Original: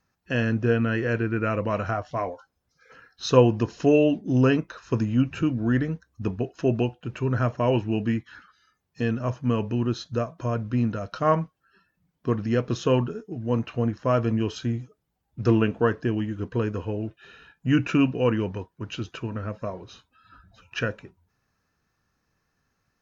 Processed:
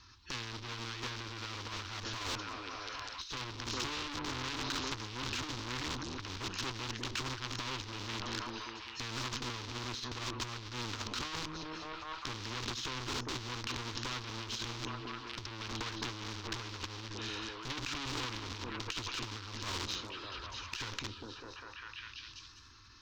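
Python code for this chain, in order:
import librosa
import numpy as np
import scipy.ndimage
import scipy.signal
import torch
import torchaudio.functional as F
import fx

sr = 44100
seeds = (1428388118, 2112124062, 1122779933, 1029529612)

p1 = fx.quant_companded(x, sr, bits=2)
p2 = x + (p1 * librosa.db_to_amplitude(-8.5))
p3 = fx.bass_treble(p2, sr, bass_db=6, treble_db=5)
p4 = p3 + fx.echo_stepped(p3, sr, ms=200, hz=200.0, octaves=0.7, feedback_pct=70, wet_db=-8, dry=0)
p5 = fx.tube_stage(p4, sr, drive_db=25.0, bias=0.45)
p6 = fx.curve_eq(p5, sr, hz=(110.0, 170.0, 320.0, 660.0, 1000.0, 1800.0, 3800.0, 5700.0, 9700.0), db=(0, -23, -2, -25, 3, -4, 9, 1, -27))
p7 = fx.over_compress(p6, sr, threshold_db=-35.0, ratio=-0.5)
p8 = fx.transient(p7, sr, attack_db=-6, sustain_db=2)
p9 = fx.spectral_comp(p8, sr, ratio=2.0)
y = p9 * librosa.db_to_amplitude(1.5)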